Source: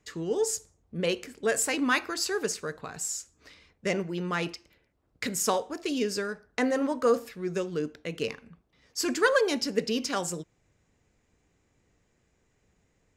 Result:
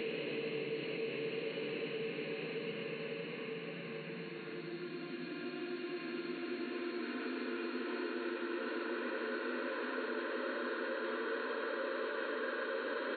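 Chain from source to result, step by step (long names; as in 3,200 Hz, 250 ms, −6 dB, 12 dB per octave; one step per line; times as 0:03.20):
loose part that buzzes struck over −35 dBFS, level −24 dBFS
extreme stretch with random phases 13×, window 1.00 s, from 0:08.32
reversed playback
downward compressor, threshold −35 dBFS, peak gain reduction 14.5 dB
reversed playback
brick-wall band-pass 130–4,400 Hz
on a send: single-tap delay 108 ms −6.5 dB
on the sum: multiband upward and downward compressor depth 70%
level −2 dB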